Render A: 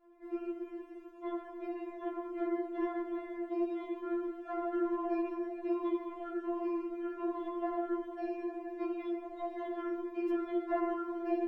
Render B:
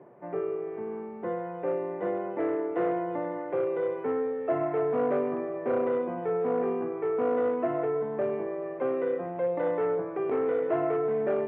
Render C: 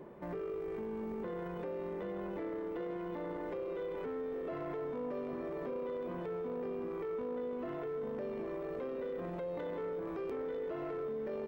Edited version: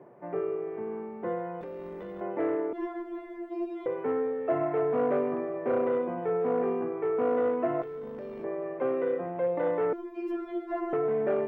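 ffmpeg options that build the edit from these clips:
-filter_complex "[2:a]asplit=2[a][b];[0:a]asplit=2[c][d];[1:a]asplit=5[e][f][g][h][i];[e]atrim=end=1.612[j];[a]atrim=start=1.608:end=2.212[k];[f]atrim=start=2.208:end=2.732[l];[c]atrim=start=2.728:end=3.862[m];[g]atrim=start=3.858:end=7.822[n];[b]atrim=start=7.818:end=8.442[o];[h]atrim=start=8.438:end=9.932[p];[d]atrim=start=9.928:end=10.932[q];[i]atrim=start=10.928[r];[j][k]acrossfade=d=0.004:c1=hsin:c2=hsin[s];[s][l]acrossfade=d=0.004:c1=hsin:c2=hsin[t];[t][m]acrossfade=d=0.004:c1=hsin:c2=hsin[u];[u][n]acrossfade=d=0.004:c1=hsin:c2=hsin[v];[v][o]acrossfade=d=0.004:c1=hsin:c2=hsin[w];[w][p]acrossfade=d=0.004:c1=hsin:c2=hsin[x];[x][q]acrossfade=d=0.004:c1=hsin:c2=hsin[y];[y][r]acrossfade=d=0.004:c1=hsin:c2=hsin"

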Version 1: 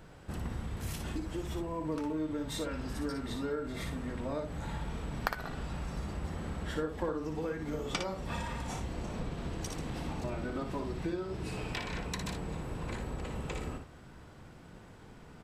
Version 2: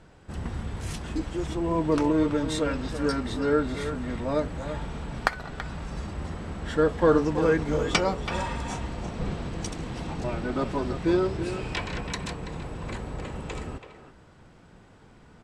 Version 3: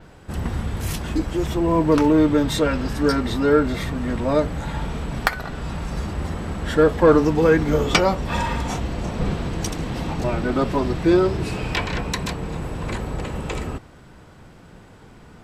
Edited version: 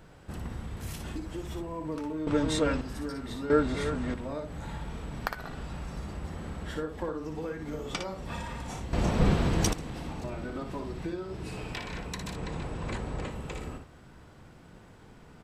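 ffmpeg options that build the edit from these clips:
-filter_complex "[1:a]asplit=3[a][b][c];[0:a]asplit=5[d][e][f][g][h];[d]atrim=end=2.272[i];[a]atrim=start=2.268:end=2.812[j];[e]atrim=start=2.808:end=3.502[k];[b]atrim=start=3.498:end=4.142[l];[f]atrim=start=4.138:end=8.932[m];[2:a]atrim=start=8.928:end=9.732[n];[g]atrim=start=9.728:end=12.362[o];[c]atrim=start=12.358:end=13.302[p];[h]atrim=start=13.298[q];[i][j]acrossfade=d=0.004:c1=hsin:c2=hsin[r];[r][k]acrossfade=d=0.004:c1=hsin:c2=hsin[s];[s][l]acrossfade=d=0.004:c1=hsin:c2=hsin[t];[t][m]acrossfade=d=0.004:c1=hsin:c2=hsin[u];[u][n]acrossfade=d=0.004:c1=hsin:c2=hsin[v];[v][o]acrossfade=d=0.004:c1=hsin:c2=hsin[w];[w][p]acrossfade=d=0.004:c1=hsin:c2=hsin[x];[x][q]acrossfade=d=0.004:c1=hsin:c2=hsin"

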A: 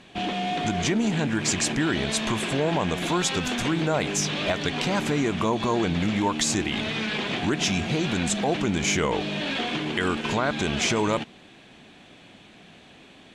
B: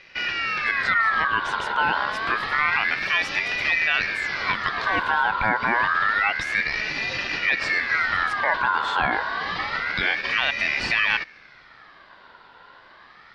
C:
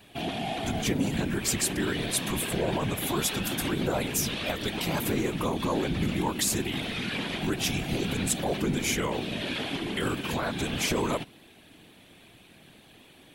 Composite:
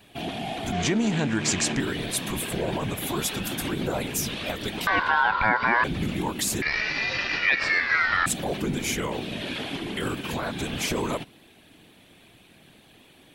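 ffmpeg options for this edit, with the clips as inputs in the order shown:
-filter_complex "[1:a]asplit=2[a][b];[2:a]asplit=4[c][d][e][f];[c]atrim=end=0.722[g];[0:a]atrim=start=0.718:end=1.802[h];[d]atrim=start=1.798:end=4.872[i];[a]atrim=start=4.868:end=5.842[j];[e]atrim=start=5.838:end=6.622[k];[b]atrim=start=6.618:end=8.262[l];[f]atrim=start=8.258[m];[g][h]acrossfade=d=0.004:c1=hsin:c2=hsin[n];[n][i]acrossfade=d=0.004:c1=hsin:c2=hsin[o];[o][j]acrossfade=d=0.004:c1=hsin:c2=hsin[p];[p][k]acrossfade=d=0.004:c1=hsin:c2=hsin[q];[q][l]acrossfade=d=0.004:c1=hsin:c2=hsin[r];[r][m]acrossfade=d=0.004:c1=hsin:c2=hsin"

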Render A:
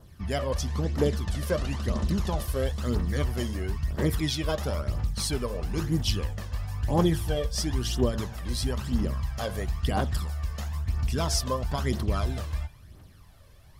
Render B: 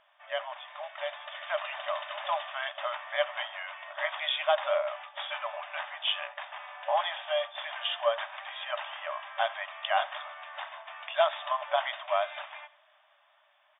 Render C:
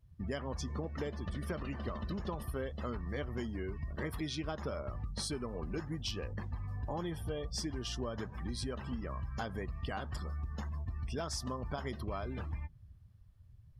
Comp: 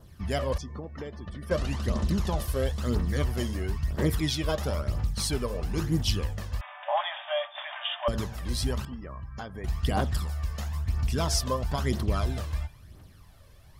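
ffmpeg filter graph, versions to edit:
-filter_complex "[2:a]asplit=2[a][b];[0:a]asplit=4[c][d][e][f];[c]atrim=end=0.582[g];[a]atrim=start=0.578:end=1.512[h];[d]atrim=start=1.508:end=6.612[i];[1:a]atrim=start=6.608:end=8.082[j];[e]atrim=start=8.078:end=8.852[k];[b]atrim=start=8.848:end=9.642[l];[f]atrim=start=9.638[m];[g][h]acrossfade=d=0.004:c1=hsin:c2=hsin[n];[n][i]acrossfade=d=0.004:c1=hsin:c2=hsin[o];[o][j]acrossfade=d=0.004:c1=hsin:c2=hsin[p];[p][k]acrossfade=d=0.004:c1=hsin:c2=hsin[q];[q][l]acrossfade=d=0.004:c1=hsin:c2=hsin[r];[r][m]acrossfade=d=0.004:c1=hsin:c2=hsin"

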